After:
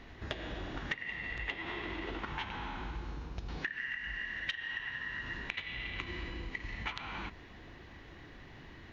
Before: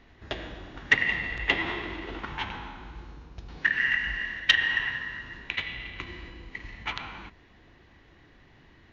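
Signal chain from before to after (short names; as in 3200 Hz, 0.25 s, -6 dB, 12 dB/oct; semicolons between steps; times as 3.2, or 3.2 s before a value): compressor 12:1, threshold -40 dBFS, peak gain reduction 25.5 dB; gain +4.5 dB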